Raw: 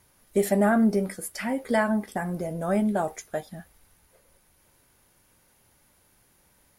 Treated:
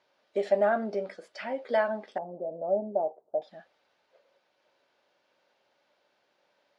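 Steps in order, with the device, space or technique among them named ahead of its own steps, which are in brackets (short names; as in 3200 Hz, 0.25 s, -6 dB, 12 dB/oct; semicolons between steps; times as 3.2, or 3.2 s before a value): phone earpiece (speaker cabinet 440–4500 Hz, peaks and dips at 590 Hz +7 dB, 1100 Hz -3 dB, 2000 Hz -4 dB); 2.18–3.42 steep low-pass 830 Hz 36 dB/oct; gain -3 dB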